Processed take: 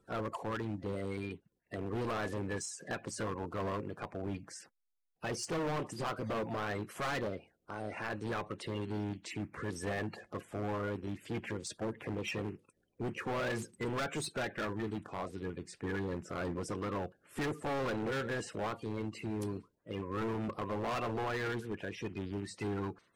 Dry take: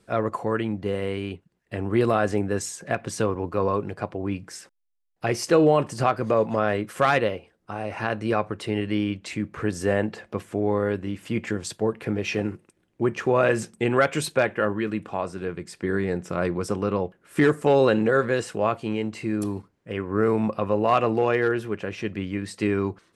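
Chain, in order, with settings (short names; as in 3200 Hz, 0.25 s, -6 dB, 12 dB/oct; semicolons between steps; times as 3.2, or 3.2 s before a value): bin magnitudes rounded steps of 30 dB; overloaded stage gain 24.5 dB; gain -8 dB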